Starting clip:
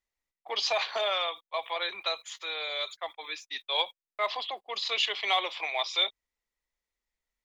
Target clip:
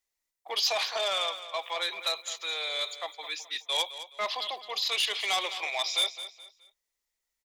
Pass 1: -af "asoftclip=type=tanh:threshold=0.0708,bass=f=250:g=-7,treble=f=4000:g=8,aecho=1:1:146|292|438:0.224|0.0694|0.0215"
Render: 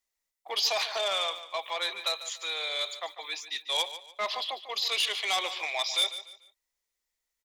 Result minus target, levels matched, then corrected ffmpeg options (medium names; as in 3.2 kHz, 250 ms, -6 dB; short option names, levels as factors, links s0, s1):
echo 65 ms early
-af "asoftclip=type=tanh:threshold=0.0708,bass=f=250:g=-7,treble=f=4000:g=8,aecho=1:1:211|422|633:0.224|0.0694|0.0215"